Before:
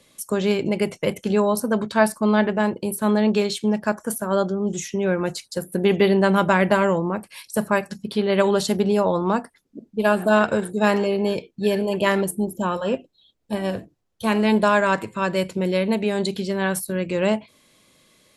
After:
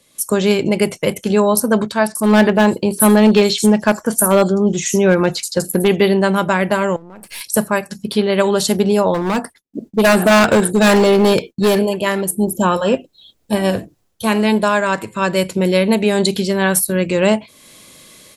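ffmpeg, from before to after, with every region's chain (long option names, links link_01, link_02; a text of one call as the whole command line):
ffmpeg -i in.wav -filter_complex "[0:a]asettb=1/sr,asplit=3[link_01][link_02][link_03];[link_01]atrim=end=2.074[link_04];[link_02]atrim=start=2.07:end=5.88,asetpts=PTS-STARTPTS,afade=type=in:duration=0.004:curve=qsin,afade=type=out:start_time=3.806:duration=0.004:curve=qsin,acrossover=split=5800[link_05][link_06];[link_06]adelay=80[link_07];[link_05][link_07]amix=inputs=2:normalize=0,atrim=end_sample=168021,asoftclip=type=hard:threshold=-13.5dB[link_08];[link_03]atrim=start=5.876[link_09];[link_04][link_08]acrossfade=duration=0.004:curve1=hsin:curve2=qsin[link_10];[link_10][link_09]acrossfade=duration=0.004:curve1=qsin:curve2=hsin,asettb=1/sr,asplit=3[link_11][link_12][link_13];[link_11]atrim=end=6.964[link_14];[link_12]atrim=start=6.96:end=7.41,asetpts=PTS-STARTPTS,afade=type=in:duration=0.004:curve=qsin,afade=type=out:start_time=0.446:duration=0.004:curve=qsin,aeval=exprs='if(lt(val(0),0),0.447*val(0),val(0))':channel_layout=same,bandreject=frequency=1100:width=12,acompressor=threshold=-38dB:ratio=12:attack=3.2:release=140:knee=1:detection=peak[link_15];[link_13]atrim=start=7.406[link_16];[link_14][link_15]acrossfade=duration=0.004:curve1=hsin:curve2=qsin[link_17];[link_17][link_16]acrossfade=duration=0.004:curve1=qsin:curve2=hsin,asettb=1/sr,asplit=3[link_18][link_19][link_20];[link_18]atrim=end=9.144[link_21];[link_19]atrim=start=9.14:end=11.79,asetpts=PTS-STARTPTS,afade=type=in:duration=0.004:curve=qsin,afade=type=out:start_time=2.646:duration=0.004:curve=qsin,agate=range=-33dB:threshold=-52dB:ratio=3:release=100:detection=peak,volume=19.5dB,asoftclip=hard,volume=-19.5dB[link_22];[link_20]atrim=start=11.786[link_23];[link_21][link_22]acrossfade=duration=0.004:curve1=hsin:curve2=qsin[link_24];[link_24][link_23]acrossfade=duration=0.004:curve1=qsin:curve2=hsin,dynaudnorm=framelen=130:gausssize=3:maxgain=14.5dB,highshelf=frequency=5900:gain=8,volume=-2.5dB" out.wav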